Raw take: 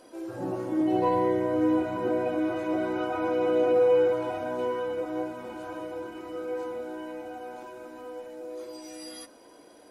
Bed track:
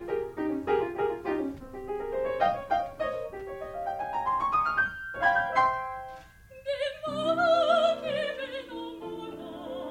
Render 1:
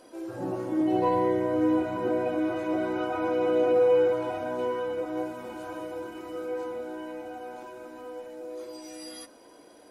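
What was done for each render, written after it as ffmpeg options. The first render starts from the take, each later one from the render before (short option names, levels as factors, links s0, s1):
-filter_complex "[0:a]asettb=1/sr,asplit=3[s0][s1][s2];[s0]atrim=end=5.174[s3];[s1]atrim=start=5.17:end=6.48,asetpts=PTS-STARTPTS,afade=t=in:d=0.004:c=qsin,afade=t=out:st=1.306:d=0.004:c=qsin,highshelf=f=6300:g=5[s4];[s2]atrim=start=6.476[s5];[s3][s4]acrossfade=d=0.004:c1=hsin:c2=qsin[s6];[s6][s5]acrossfade=d=0.004:c1=qsin:c2=hsin"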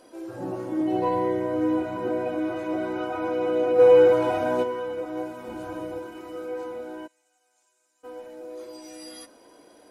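-filter_complex "[0:a]asplit=3[s0][s1][s2];[s0]afade=t=out:st=3.78:d=0.02[s3];[s1]acontrast=90,afade=t=in:st=3.78:d=0.02,afade=t=out:st=4.62:d=0.02[s4];[s2]afade=t=in:st=4.62:d=0.02[s5];[s3][s4][s5]amix=inputs=3:normalize=0,asettb=1/sr,asplit=3[s6][s7][s8];[s6]atrim=end=5.474[s9];[s7]atrim=start=5.47:end=5.99,asetpts=PTS-STARTPTS,afade=t=in:d=0.004:c=qsin,afade=t=out:st=0.516:d=0.004:c=qsin,lowshelf=f=300:g=9.5[s10];[s8]atrim=start=5.986[s11];[s9][s10]acrossfade=d=0.004:c1=hsin:c2=qsin[s12];[s12][s11]acrossfade=d=0.004:c1=qsin:c2=hsin,asplit=3[s13][s14][s15];[s13]afade=t=out:st=7.06:d=0.02[s16];[s14]bandpass=f=7500:t=q:w=3.5,afade=t=in:st=7.06:d=0.02,afade=t=out:st=8.03:d=0.02[s17];[s15]afade=t=in:st=8.03:d=0.02[s18];[s16][s17][s18]amix=inputs=3:normalize=0"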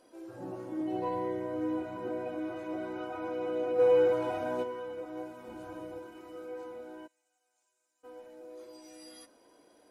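-af "volume=0.355"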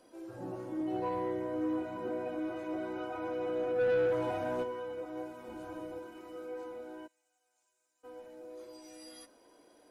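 -filter_complex "[0:a]acrossover=split=210[s0][s1];[s0]aphaser=in_gain=1:out_gain=1:delay=4.2:decay=0.35:speed=0.24:type=triangular[s2];[s1]asoftclip=type=tanh:threshold=0.0501[s3];[s2][s3]amix=inputs=2:normalize=0"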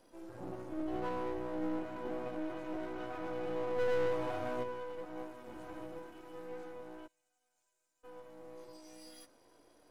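-af "aeval=exprs='if(lt(val(0),0),0.251*val(0),val(0))':c=same"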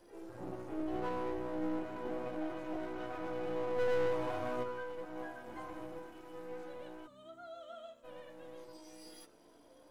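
-filter_complex "[1:a]volume=0.0473[s0];[0:a][s0]amix=inputs=2:normalize=0"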